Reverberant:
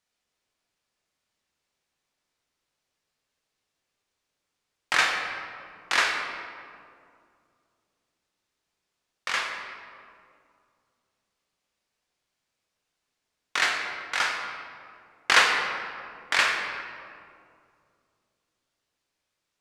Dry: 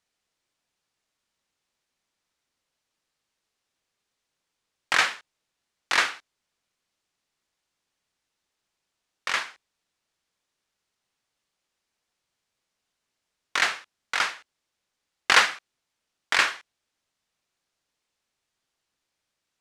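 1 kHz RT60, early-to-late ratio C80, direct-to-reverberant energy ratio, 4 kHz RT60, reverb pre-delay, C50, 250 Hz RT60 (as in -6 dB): 2.1 s, 4.5 dB, 1.0 dB, 1.3 s, 6 ms, 3.0 dB, 2.9 s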